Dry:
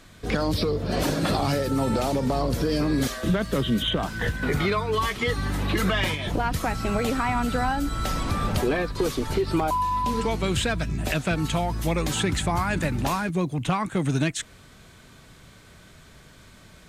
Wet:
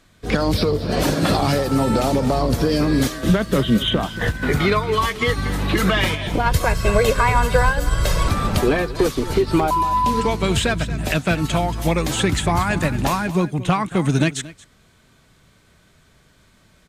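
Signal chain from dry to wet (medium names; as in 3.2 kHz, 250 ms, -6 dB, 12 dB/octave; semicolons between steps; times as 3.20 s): 6.46–8.28 s: comb 1.9 ms, depth 85%; delay 229 ms -13 dB; upward expansion 1.5:1, over -45 dBFS; trim +7.5 dB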